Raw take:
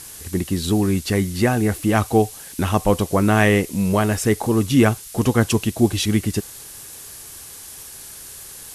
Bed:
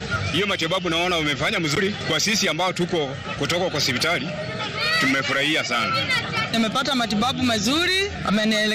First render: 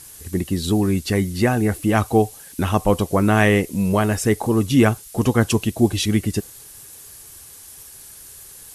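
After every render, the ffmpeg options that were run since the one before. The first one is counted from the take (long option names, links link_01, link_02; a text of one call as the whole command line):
ffmpeg -i in.wav -af "afftdn=noise_reduction=6:noise_floor=-39" out.wav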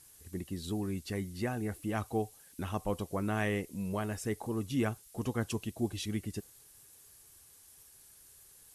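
ffmpeg -i in.wav -af "volume=-16.5dB" out.wav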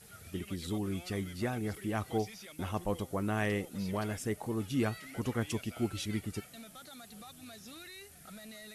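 ffmpeg -i in.wav -i bed.wav -filter_complex "[1:a]volume=-29.5dB[link_01];[0:a][link_01]amix=inputs=2:normalize=0" out.wav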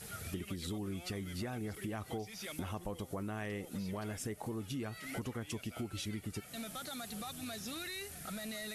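ffmpeg -i in.wav -filter_complex "[0:a]asplit=2[link_01][link_02];[link_02]alimiter=level_in=6dB:limit=-24dB:level=0:latency=1:release=97,volume=-6dB,volume=2.5dB[link_03];[link_01][link_03]amix=inputs=2:normalize=0,acompressor=threshold=-38dB:ratio=6" out.wav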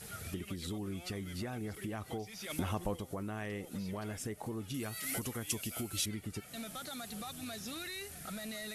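ffmpeg -i in.wav -filter_complex "[0:a]asplit=3[link_01][link_02][link_03];[link_01]afade=type=out:start_time=2.49:duration=0.02[link_04];[link_02]acontrast=27,afade=type=in:start_time=2.49:duration=0.02,afade=type=out:start_time=2.95:duration=0.02[link_05];[link_03]afade=type=in:start_time=2.95:duration=0.02[link_06];[link_04][link_05][link_06]amix=inputs=3:normalize=0,asettb=1/sr,asplit=3[link_07][link_08][link_09];[link_07]atrim=end=4.744[link_10];[link_08]atrim=start=4.74:end=6.06,asetpts=PTS-STARTPTS,afade=type=in:duration=0.004:curve=qsin,afade=type=out:start_time=1.316:duration=0.004:curve=qsin,aemphasis=mode=production:type=75kf[link_11];[link_09]atrim=start=6.056[link_12];[link_10][link_11]acrossfade=duration=0.004:curve1=hsin:curve2=qsin[link_13];[link_13][link_12]acrossfade=duration=0.004:curve1=qsin:curve2=hsin" out.wav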